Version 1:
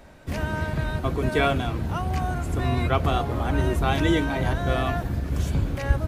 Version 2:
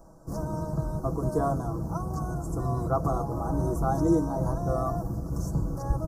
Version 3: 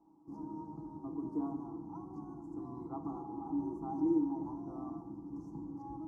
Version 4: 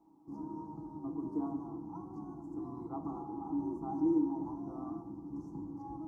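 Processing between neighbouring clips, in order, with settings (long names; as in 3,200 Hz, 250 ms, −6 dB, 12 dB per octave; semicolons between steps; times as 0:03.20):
elliptic band-stop filter 1,200–5,600 Hz, stop band 80 dB; comb filter 6.1 ms, depth 59%; level −3.5 dB
formant filter u; convolution reverb RT60 1.2 s, pre-delay 16 ms, DRR 7.5 dB; level −1 dB
flanger 1.4 Hz, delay 8.4 ms, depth 6.2 ms, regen +79%; level +5.5 dB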